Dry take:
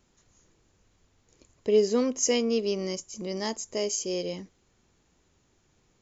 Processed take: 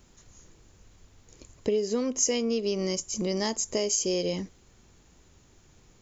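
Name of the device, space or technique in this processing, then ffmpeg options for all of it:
ASMR close-microphone chain: -af "lowshelf=f=100:g=7,acompressor=threshold=0.0282:ratio=6,highshelf=f=6300:g=4.5,volume=2.11"

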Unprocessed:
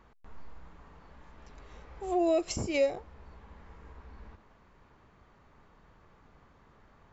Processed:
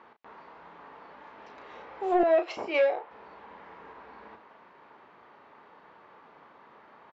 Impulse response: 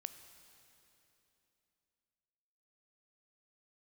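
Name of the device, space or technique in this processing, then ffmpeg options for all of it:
intercom: -filter_complex "[0:a]highpass=350,lowpass=3700,equalizer=f=900:t=o:w=0.26:g=4,asoftclip=type=tanh:threshold=0.0596,lowpass=5400,asplit=2[s0][s1];[s1]adelay=34,volume=0.398[s2];[s0][s2]amix=inputs=2:normalize=0,asettb=1/sr,asplit=3[s3][s4][s5];[s3]atrim=end=2.234[s6];[s4]atrim=start=2.23:end=3.11,asetpts=PTS-STARTPTS,afade=t=in:d=0.004:c=qsin,afade=t=out:st=0.876:d=0.004:c=qsin,acrossover=split=430 3800:gain=0.224 1 0.2[s7][s8][s9];[s7][s8][s9]amix=inputs=3:normalize=0[s10];[s5]atrim=start=3.106[s11];[s6][s10]acrossfade=d=0.004:c1=hsin:c2=qsin[s12];[s12][s11]acrossfade=d=0.004:c1=qsin:c2=hsin,volume=2.51"

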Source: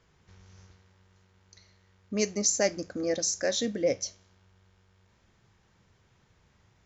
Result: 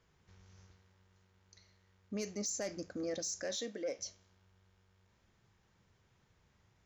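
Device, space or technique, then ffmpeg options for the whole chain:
soft clipper into limiter: -filter_complex "[0:a]asettb=1/sr,asplit=3[s0][s1][s2];[s0]atrim=end=3.564[s3];[s1]atrim=start=3.56:end=3.99,asetpts=PTS-STARTPTS,afade=t=in:d=0.004:c=qsin,afade=t=out:st=0.426:d=0.004:c=qsin,highpass=340[s4];[s2]atrim=start=3.986[s5];[s3][s4]acrossfade=d=0.004:c1=hsin:c2=qsin[s6];[s6][s5]acrossfade=d=0.004:c1=qsin:c2=hsin,asoftclip=type=tanh:threshold=0.133,alimiter=level_in=1.06:limit=0.0631:level=0:latency=1:release=36,volume=0.944,volume=0.473"

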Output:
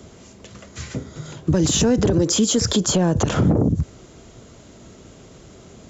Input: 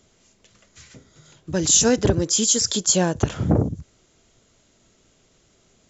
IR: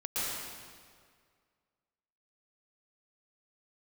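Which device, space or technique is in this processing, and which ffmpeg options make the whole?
mastering chain: -filter_complex "[0:a]highpass=41,equalizer=f=1100:t=o:w=0.77:g=2,acrossover=split=170|3100[s0][s1][s2];[s0]acompressor=threshold=0.0282:ratio=4[s3];[s1]acompressor=threshold=0.0708:ratio=4[s4];[s2]acompressor=threshold=0.0282:ratio=4[s5];[s3][s4][s5]amix=inputs=3:normalize=0,acompressor=threshold=0.0562:ratio=2.5,asoftclip=type=tanh:threshold=0.158,tiltshelf=f=970:g=5,asoftclip=type=hard:threshold=0.158,alimiter=level_in=14.1:limit=0.891:release=50:level=0:latency=1,volume=0.355"

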